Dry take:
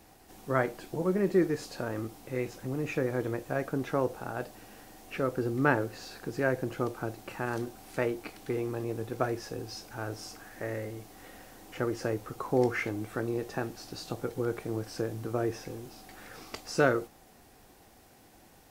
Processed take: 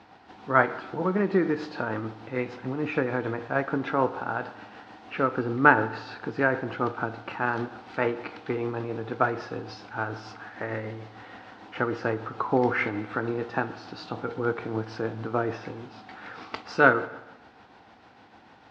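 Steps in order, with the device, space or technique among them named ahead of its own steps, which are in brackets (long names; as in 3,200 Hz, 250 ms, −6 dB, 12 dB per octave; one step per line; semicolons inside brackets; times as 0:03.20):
combo amplifier with spring reverb and tremolo (spring reverb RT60 1.1 s, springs 36/59 ms, chirp 55 ms, DRR 12.5 dB; amplitude tremolo 6.7 Hz, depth 36%; loudspeaker in its box 110–4,100 Hz, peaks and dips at 150 Hz −5 dB, 370 Hz −4 dB, 560 Hz −3 dB, 920 Hz +6 dB, 1,400 Hz +6 dB)
level +6.5 dB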